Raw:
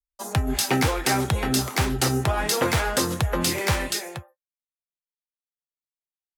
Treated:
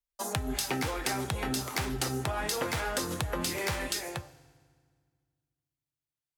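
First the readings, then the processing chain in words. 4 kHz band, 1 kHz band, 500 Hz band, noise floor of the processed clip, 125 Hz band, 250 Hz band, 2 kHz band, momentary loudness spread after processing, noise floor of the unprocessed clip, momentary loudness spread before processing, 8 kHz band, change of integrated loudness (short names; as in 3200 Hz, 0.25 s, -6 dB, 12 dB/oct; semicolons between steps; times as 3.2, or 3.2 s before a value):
-7.5 dB, -8.0 dB, -8.0 dB, under -85 dBFS, -10.5 dB, -9.0 dB, -7.5 dB, 3 LU, under -85 dBFS, 6 LU, -7.5 dB, -8.5 dB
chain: low shelf 190 Hz -3 dB; compressor, threshold -29 dBFS, peak gain reduction 10.5 dB; FDN reverb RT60 1.8 s, low-frequency decay 1.35×, high-frequency decay 0.85×, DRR 16.5 dB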